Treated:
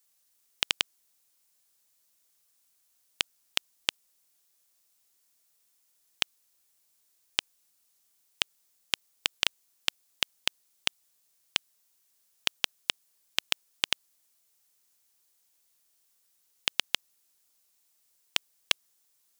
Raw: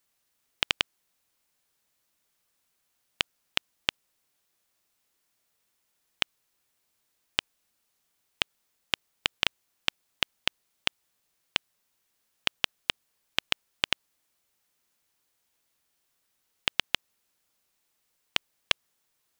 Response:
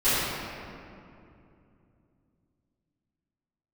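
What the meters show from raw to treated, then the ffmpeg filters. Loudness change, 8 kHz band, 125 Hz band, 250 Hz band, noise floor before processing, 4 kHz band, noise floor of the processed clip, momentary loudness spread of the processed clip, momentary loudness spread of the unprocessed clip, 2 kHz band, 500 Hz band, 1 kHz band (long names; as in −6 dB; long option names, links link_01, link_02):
−0.5 dB, +5.5 dB, −6.5 dB, −5.0 dB, −76 dBFS, −0.5 dB, −71 dBFS, 4 LU, 4 LU, −2.5 dB, −3.5 dB, −3.5 dB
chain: -af "bass=frequency=250:gain=-3,treble=frequency=4000:gain=10,volume=-3.5dB"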